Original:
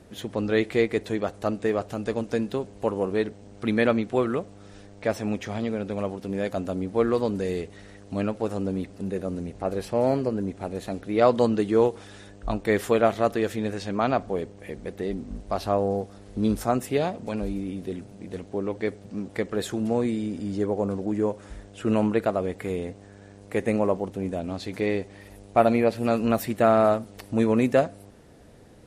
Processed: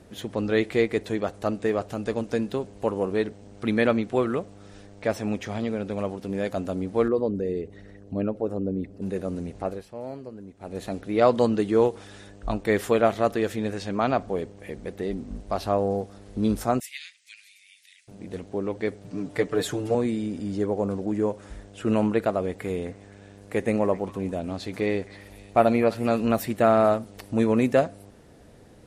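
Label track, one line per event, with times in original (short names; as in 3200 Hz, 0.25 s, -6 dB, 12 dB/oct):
7.080000	9.020000	formant sharpening exponent 1.5
9.620000	10.800000	dip -13.5 dB, fades 0.22 s
16.800000	18.080000	elliptic high-pass 2000 Hz, stop band 60 dB
19.040000	19.950000	comb 6.8 ms, depth 93%
22.480000	26.250000	delay with a stepping band-pass 0.26 s, band-pass from 1400 Hz, each repeat 1.4 oct, level -11.5 dB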